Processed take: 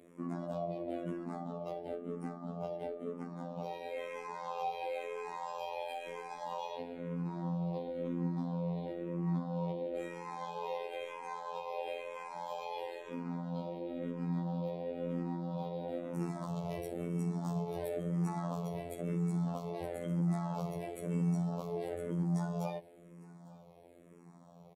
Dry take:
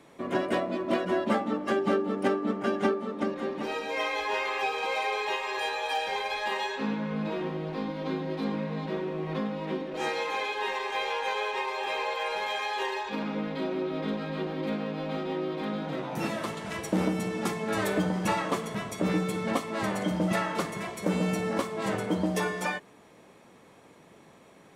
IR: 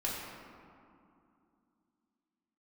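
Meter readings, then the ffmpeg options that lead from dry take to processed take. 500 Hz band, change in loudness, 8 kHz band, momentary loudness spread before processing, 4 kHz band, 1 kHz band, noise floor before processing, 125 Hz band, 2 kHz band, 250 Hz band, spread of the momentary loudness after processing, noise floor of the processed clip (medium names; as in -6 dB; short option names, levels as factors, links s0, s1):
-8.5 dB, -8.5 dB, -14.5 dB, 5 LU, -18.5 dB, -10.5 dB, -55 dBFS, -1.0 dB, -19.5 dB, -7.0 dB, 8 LU, -57 dBFS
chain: -filter_complex "[0:a]asoftclip=type=tanh:threshold=0.126,equalizer=f=3700:t=o:w=1.7:g=-11.5,alimiter=level_in=1.5:limit=0.0631:level=0:latency=1:release=97,volume=0.668,equalizer=f=160:t=o:w=0.67:g=9,equalizer=f=630:t=o:w=0.67:g=6,equalizer=f=1600:t=o:w=0.67:g=-6,equalizer=f=4000:t=o:w=0.67:g=4,afftfilt=real='hypot(re,im)*cos(PI*b)':imag='0':win_size=2048:overlap=0.75,asplit=2[s0][s1];[s1]aecho=0:1:853:0.0794[s2];[s0][s2]amix=inputs=2:normalize=0,asplit=2[s3][s4];[s4]afreqshift=-1[s5];[s3][s5]amix=inputs=2:normalize=1"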